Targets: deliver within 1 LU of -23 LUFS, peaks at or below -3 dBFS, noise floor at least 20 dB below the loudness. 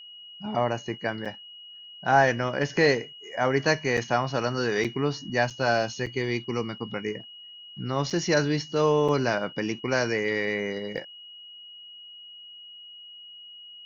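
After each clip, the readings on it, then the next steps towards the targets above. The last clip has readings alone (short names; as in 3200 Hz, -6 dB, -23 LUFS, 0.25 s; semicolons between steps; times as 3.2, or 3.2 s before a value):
dropouts 8; longest dropout 6.2 ms; steady tone 2900 Hz; tone level -43 dBFS; loudness -26.5 LUFS; peak -7.0 dBFS; loudness target -23.0 LUFS
-> interpolate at 1.25/3.97/4.84/5.5/6.06/8.1/9.08/10.97, 6.2 ms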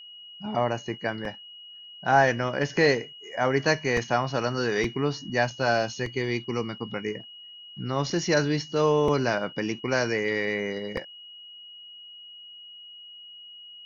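dropouts 0; steady tone 2900 Hz; tone level -43 dBFS
-> notch 2900 Hz, Q 30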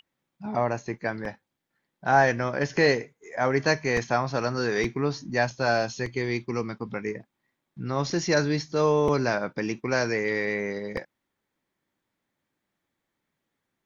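steady tone none; loudness -26.5 LUFS; peak -7.0 dBFS; loudness target -23.0 LUFS
-> gain +3.5 dB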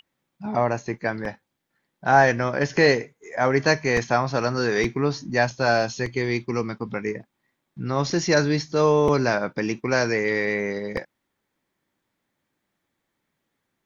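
loudness -23.0 LUFS; peak -3.5 dBFS; noise floor -79 dBFS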